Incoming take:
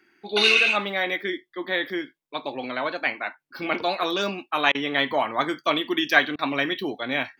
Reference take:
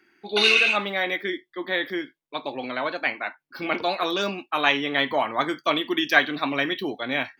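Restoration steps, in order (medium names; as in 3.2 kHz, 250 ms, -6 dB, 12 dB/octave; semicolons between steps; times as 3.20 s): interpolate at 4.72/6.36 s, 27 ms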